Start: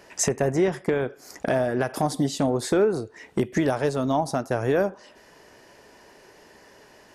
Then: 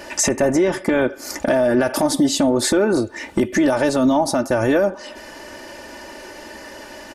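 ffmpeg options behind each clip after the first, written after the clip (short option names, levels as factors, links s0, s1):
-filter_complex "[0:a]aecho=1:1:3.4:0.7,asplit=2[s0][s1];[s1]acompressor=threshold=0.0316:ratio=6,volume=1.12[s2];[s0][s2]amix=inputs=2:normalize=0,alimiter=limit=0.168:level=0:latency=1:release=22,volume=2.11"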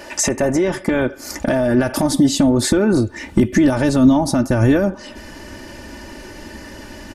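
-af "asubboost=boost=5:cutoff=240"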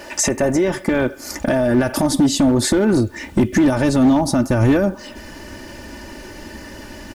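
-af "volume=2.99,asoftclip=hard,volume=0.335,acrusher=bits=8:mix=0:aa=0.000001"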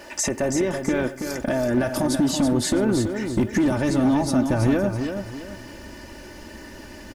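-af "aecho=1:1:329|658|987|1316:0.447|0.147|0.0486|0.0161,volume=0.501"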